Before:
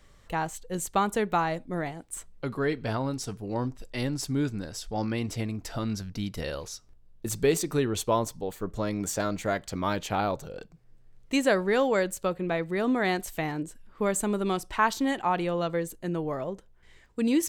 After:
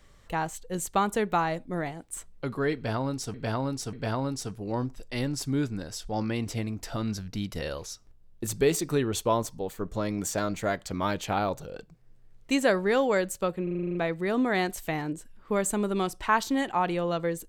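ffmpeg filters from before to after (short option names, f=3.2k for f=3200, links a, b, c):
-filter_complex "[0:a]asplit=11[a][b][c][d][e][f][g][h][i][j][k];[a]atrim=end=3.342[l];[b]atrim=start=2.748:end=3.342[m];[c]atrim=start=2.748:end=12.492[n];[d]atrim=start=12.448:end=12.492[o];[e]atrim=start=12.448:end=12.492[p];[f]atrim=start=12.448:end=12.492[q];[g]atrim=start=12.448:end=12.492[r];[h]atrim=start=12.448:end=12.492[s];[i]atrim=start=12.448:end=12.492[t];[j]atrim=start=12.448:end=12.492[u];[k]atrim=start=12.448[v];[l][m]acrossfade=d=0.004:c1=hsin:c2=hsin[w];[w][n]acrossfade=d=0.004:c1=hsin:c2=hsin[x];[x][o]acrossfade=d=0.004:c1=hsin:c2=hsin[y];[y][p]acrossfade=d=0.004:c1=hsin:c2=hsin[z];[z][q]acrossfade=d=0.004:c1=hsin:c2=hsin[aa];[aa][r]acrossfade=d=0.004:c1=hsin:c2=hsin[ab];[ab][s]acrossfade=d=0.004:c1=hsin:c2=hsin[ac];[ac][t]acrossfade=d=0.004:c1=hsin:c2=hsin[ad];[ad][u]acrossfade=d=0.004:c1=hsin:c2=hsin[ae];[ae][v]acrossfade=d=0.004:c1=hsin:c2=hsin"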